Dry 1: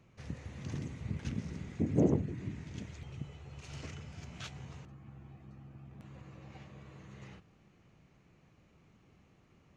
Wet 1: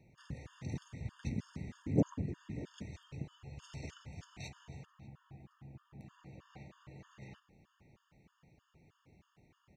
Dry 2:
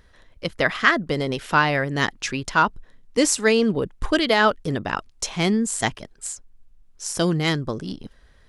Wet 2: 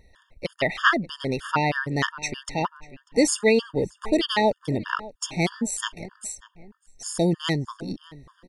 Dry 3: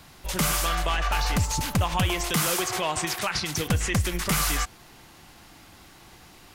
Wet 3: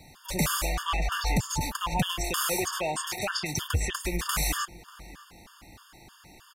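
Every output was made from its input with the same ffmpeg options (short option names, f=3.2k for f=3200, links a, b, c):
-filter_complex "[0:a]asplit=2[a][b];[b]adelay=592,lowpass=f=2.3k:p=1,volume=-18.5dB,asplit=2[c][d];[d]adelay=592,lowpass=f=2.3k:p=1,volume=0.33,asplit=2[e][f];[f]adelay=592,lowpass=f=2.3k:p=1,volume=0.33[g];[a][c][e][g]amix=inputs=4:normalize=0,afftfilt=real='re*gt(sin(2*PI*3.2*pts/sr)*(1-2*mod(floor(b*sr/1024/910),2)),0)':imag='im*gt(sin(2*PI*3.2*pts/sr)*(1-2*mod(floor(b*sr/1024/910),2)),0)':win_size=1024:overlap=0.75"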